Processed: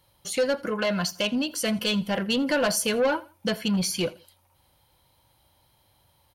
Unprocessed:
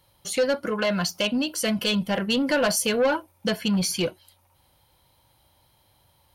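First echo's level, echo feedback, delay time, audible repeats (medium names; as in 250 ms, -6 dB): -21.5 dB, 31%, 83 ms, 2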